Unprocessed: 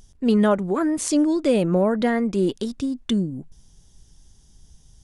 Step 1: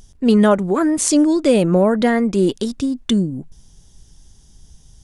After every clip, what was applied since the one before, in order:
dynamic equaliser 7,800 Hz, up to +4 dB, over −46 dBFS, Q 0.84
level +5 dB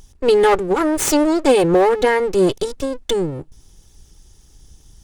lower of the sound and its delayed copy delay 2.3 ms
level +1 dB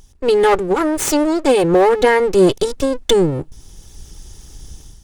automatic gain control gain up to 11.5 dB
level −1 dB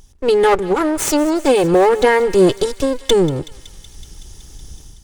feedback echo with a high-pass in the loop 187 ms, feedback 81%, high-pass 1,200 Hz, level −17 dB

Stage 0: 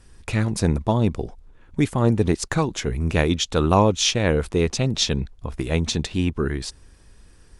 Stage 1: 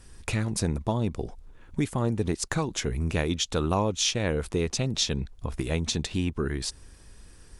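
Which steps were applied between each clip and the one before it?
high-shelf EQ 6,100 Hz +5.5 dB
downward compressor 2 to 1, threshold −28 dBFS, peak gain reduction 9.5 dB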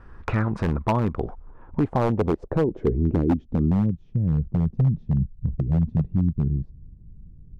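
low-pass filter sweep 1,300 Hz → 160 Hz, 0:01.28–0:04.04
wave folding −18 dBFS
level +4.5 dB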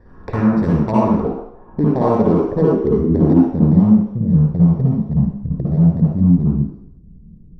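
convolution reverb RT60 0.75 s, pre-delay 51 ms, DRR −6.5 dB
level −11.5 dB

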